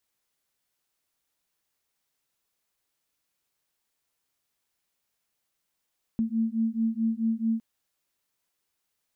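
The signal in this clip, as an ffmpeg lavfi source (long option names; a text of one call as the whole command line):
ffmpeg -f lavfi -i "aevalsrc='0.0447*(sin(2*PI*223*t)+sin(2*PI*227.6*t))':duration=1.41:sample_rate=44100" out.wav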